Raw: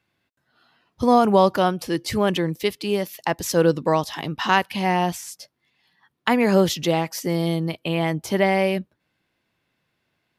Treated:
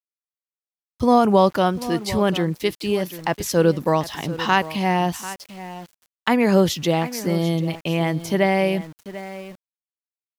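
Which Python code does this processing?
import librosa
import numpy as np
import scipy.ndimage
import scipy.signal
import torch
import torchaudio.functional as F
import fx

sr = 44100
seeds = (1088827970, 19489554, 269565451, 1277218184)

y = fx.low_shelf(x, sr, hz=140.0, db=5.5)
y = y + 10.0 ** (-15.0 / 20.0) * np.pad(y, (int(742 * sr / 1000.0), 0))[:len(y)]
y = np.where(np.abs(y) >= 10.0 ** (-41.5 / 20.0), y, 0.0)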